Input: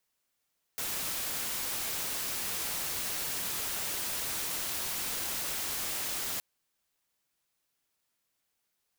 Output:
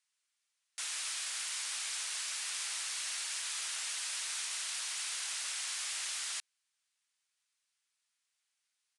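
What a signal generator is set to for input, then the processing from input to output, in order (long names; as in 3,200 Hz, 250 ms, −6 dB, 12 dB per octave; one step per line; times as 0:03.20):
noise white, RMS −34.5 dBFS 5.62 s
high-pass filter 1,500 Hz 12 dB per octave
downsampling to 22,050 Hz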